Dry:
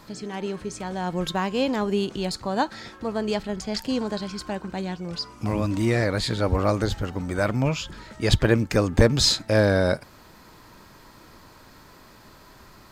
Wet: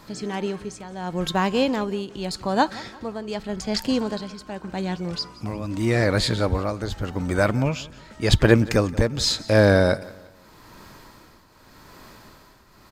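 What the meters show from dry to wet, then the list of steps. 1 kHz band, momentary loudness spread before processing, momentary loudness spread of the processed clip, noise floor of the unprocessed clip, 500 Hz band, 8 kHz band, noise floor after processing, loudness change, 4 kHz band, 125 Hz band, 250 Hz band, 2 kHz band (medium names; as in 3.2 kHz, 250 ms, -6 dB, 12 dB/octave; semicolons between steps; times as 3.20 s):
+2.0 dB, 12 LU, 16 LU, -50 dBFS, +1.5 dB, -1.0 dB, -52 dBFS, +1.5 dB, 0.0 dB, +1.0 dB, +1.5 dB, +2.5 dB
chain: tremolo triangle 0.85 Hz, depth 75%; on a send: feedback delay 176 ms, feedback 39%, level -20.5 dB; on the sum: trim +4.5 dB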